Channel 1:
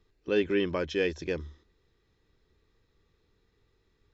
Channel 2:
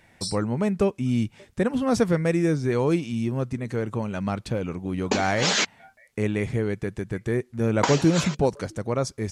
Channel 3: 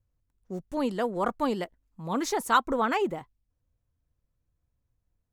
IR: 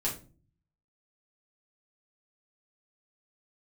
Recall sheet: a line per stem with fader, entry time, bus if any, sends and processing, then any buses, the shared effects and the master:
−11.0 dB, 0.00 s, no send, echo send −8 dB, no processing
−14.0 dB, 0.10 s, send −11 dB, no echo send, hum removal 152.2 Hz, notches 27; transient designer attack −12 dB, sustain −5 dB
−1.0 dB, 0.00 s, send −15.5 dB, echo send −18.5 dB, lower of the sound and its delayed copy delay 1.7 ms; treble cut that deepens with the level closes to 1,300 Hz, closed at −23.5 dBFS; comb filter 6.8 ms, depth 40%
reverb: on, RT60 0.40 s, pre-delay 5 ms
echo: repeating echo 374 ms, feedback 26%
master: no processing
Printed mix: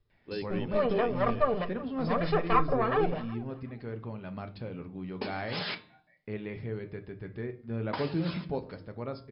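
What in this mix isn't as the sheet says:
stem 2: missing transient designer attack −12 dB, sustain −5 dB
master: extra linear-phase brick-wall low-pass 5,300 Hz

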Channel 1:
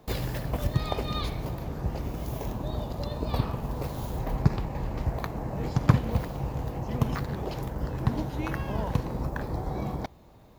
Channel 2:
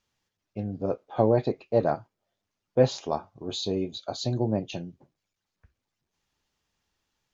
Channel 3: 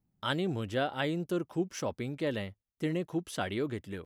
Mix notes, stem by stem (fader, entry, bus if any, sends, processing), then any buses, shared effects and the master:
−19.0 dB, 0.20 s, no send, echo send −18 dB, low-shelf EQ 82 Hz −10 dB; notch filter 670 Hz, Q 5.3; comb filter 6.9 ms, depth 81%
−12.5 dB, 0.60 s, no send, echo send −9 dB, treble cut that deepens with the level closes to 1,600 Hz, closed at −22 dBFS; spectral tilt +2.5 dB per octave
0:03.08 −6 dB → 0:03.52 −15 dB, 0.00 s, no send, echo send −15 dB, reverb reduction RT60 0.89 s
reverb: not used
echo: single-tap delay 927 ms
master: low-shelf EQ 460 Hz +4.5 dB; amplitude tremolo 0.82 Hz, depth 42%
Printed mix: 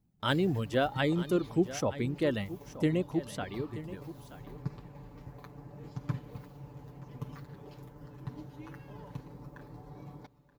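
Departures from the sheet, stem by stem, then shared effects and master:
stem 2: muted
stem 3 −6.0 dB → +1.5 dB
master: missing amplitude tremolo 0.82 Hz, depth 42%

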